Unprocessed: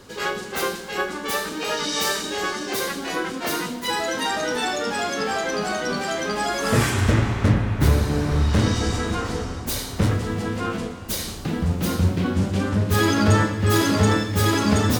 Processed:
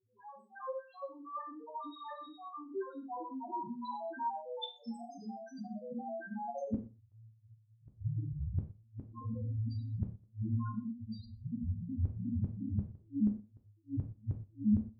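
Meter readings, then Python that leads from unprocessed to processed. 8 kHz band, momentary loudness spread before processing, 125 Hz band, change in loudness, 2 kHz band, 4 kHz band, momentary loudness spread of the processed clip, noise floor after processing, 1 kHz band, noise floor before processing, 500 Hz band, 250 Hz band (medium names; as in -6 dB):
under -40 dB, 8 LU, -16.5 dB, -17.0 dB, -32.0 dB, -26.5 dB, 10 LU, -66 dBFS, -16.5 dB, -33 dBFS, -20.5 dB, -14.0 dB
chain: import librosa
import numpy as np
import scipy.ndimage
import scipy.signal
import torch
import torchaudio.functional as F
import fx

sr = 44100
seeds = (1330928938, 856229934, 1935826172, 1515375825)

y = fx.noise_reduce_blind(x, sr, reduce_db=22)
y = fx.spec_box(y, sr, start_s=4.74, length_s=1.04, low_hz=260.0, high_hz=2000.0, gain_db=-7)
y = fx.graphic_eq(y, sr, hz=(125, 250, 500, 1000, 4000, 8000), db=(8, 5, 3, 8, 6, 8))
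y = fx.spec_topn(y, sr, count=1)
y = fx.stiff_resonator(y, sr, f0_hz=110.0, decay_s=0.47, stiffness=0.03)
y = fx.gate_flip(y, sr, shuts_db=-29.0, range_db=-39)
y = fx.spacing_loss(y, sr, db_at_10k=21)
y = y + 10.0 ** (-22.5 / 20.0) * np.pad(y, (int(124 * sr / 1000.0), 0))[:len(y)]
y = fx.rev_gated(y, sr, seeds[0], gate_ms=140, shape='falling', drr_db=2.0)
y = y * 10.0 ** (6.0 / 20.0)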